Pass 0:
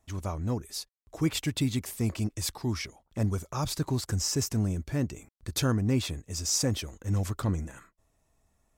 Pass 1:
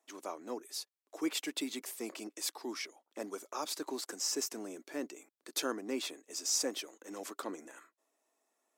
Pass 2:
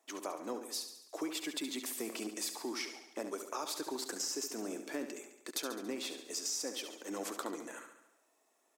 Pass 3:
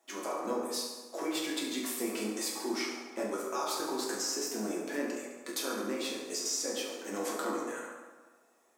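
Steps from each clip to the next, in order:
steep high-pass 290 Hz 36 dB/octave; trim -4 dB
compression 6:1, threshold -41 dBFS, peak gain reduction 12.5 dB; feedback delay 70 ms, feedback 58%, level -9 dB; trim +5 dB
reverberation RT60 1.3 s, pre-delay 7 ms, DRR -4.5 dB

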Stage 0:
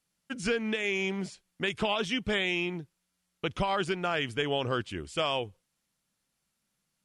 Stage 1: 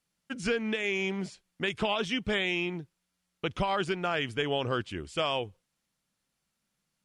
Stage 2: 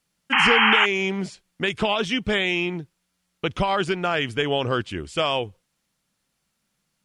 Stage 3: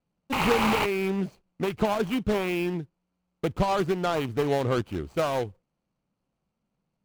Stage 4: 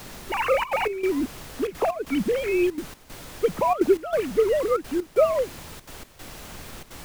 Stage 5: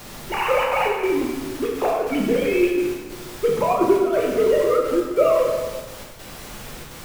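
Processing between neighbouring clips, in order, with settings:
treble shelf 8.6 kHz -5.5 dB
painted sound noise, 0.32–0.86 s, 770–3200 Hz -24 dBFS; trim +6.5 dB
median filter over 25 samples
formants replaced by sine waves; added noise pink -44 dBFS; trance gate "xxxxxxxx.xx.." 189 bpm -12 dB; trim +4 dB
plate-style reverb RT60 1.4 s, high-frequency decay 0.85×, DRR -2 dB

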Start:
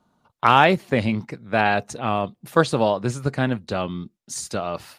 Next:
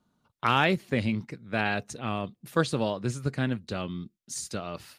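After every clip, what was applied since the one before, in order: peaking EQ 790 Hz -7.5 dB 1.4 oct; trim -4.5 dB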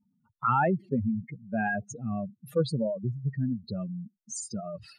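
spectral contrast enhancement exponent 3.5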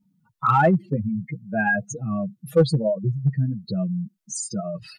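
comb 6.2 ms, depth 83%; in parallel at -7.5 dB: hard clipper -18.5 dBFS, distortion -14 dB; on the sum: trim +2 dB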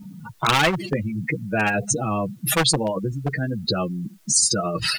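spectrum-flattening compressor 4:1; trim +2 dB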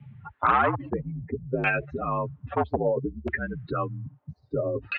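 mistuned SSB -61 Hz 160–3600 Hz; LFO low-pass saw down 0.61 Hz 380–2500 Hz; trim -5.5 dB

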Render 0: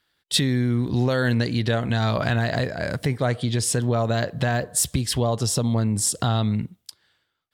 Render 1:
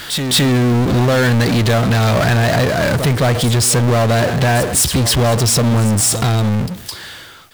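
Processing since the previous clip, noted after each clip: fade out at the end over 1.79 s; pre-echo 213 ms -18 dB; power-law waveshaper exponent 0.35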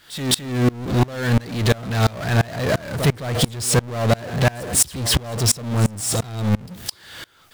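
in parallel at -3 dB: peak limiter -14.5 dBFS, peak gain reduction 7.5 dB; on the sum: sawtooth tremolo in dB swelling 2.9 Hz, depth 27 dB; trim -2 dB

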